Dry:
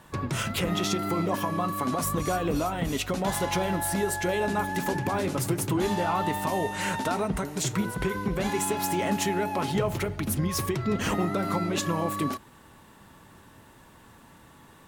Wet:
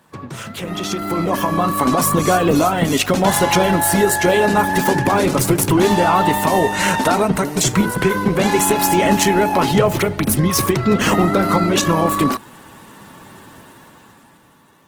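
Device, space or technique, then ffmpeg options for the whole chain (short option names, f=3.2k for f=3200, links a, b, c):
video call: -af "highpass=120,dynaudnorm=f=150:g=17:m=15dB" -ar 48000 -c:a libopus -b:a 16k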